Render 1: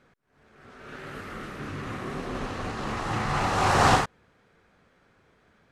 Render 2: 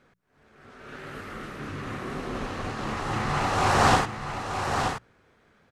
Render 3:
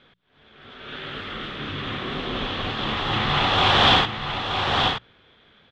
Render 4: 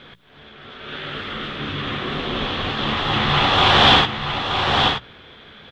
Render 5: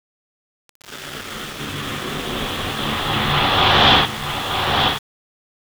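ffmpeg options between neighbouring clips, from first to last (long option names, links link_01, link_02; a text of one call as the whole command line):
ffmpeg -i in.wav -af "bandreject=frequency=60:width_type=h:width=6,bandreject=frequency=120:width_type=h:width=6,bandreject=frequency=180:width_type=h:width=6,aecho=1:1:926:0.447" out.wav
ffmpeg -i in.wav -af "asoftclip=type=hard:threshold=-18.5dB,lowpass=frequency=3400:width_type=q:width=8.3,volume=3dB" out.wav
ffmpeg -i in.wav -filter_complex "[0:a]areverse,acompressor=mode=upward:threshold=-38dB:ratio=2.5,areverse,asplit=2[link_01][link_02];[link_02]adelay=14,volume=-12dB[link_03];[link_01][link_03]amix=inputs=2:normalize=0,volume=3.5dB" out.wav
ffmpeg -i in.wav -af "aeval=exprs='val(0)*gte(abs(val(0)),0.0376)':channel_layout=same" out.wav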